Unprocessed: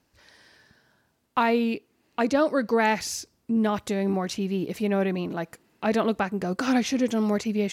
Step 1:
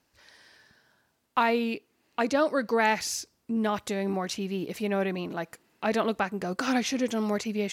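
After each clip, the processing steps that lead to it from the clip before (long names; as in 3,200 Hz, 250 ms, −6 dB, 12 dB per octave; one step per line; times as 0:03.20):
low-shelf EQ 440 Hz −6 dB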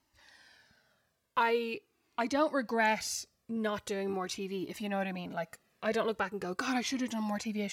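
flanger whose copies keep moving one way falling 0.43 Hz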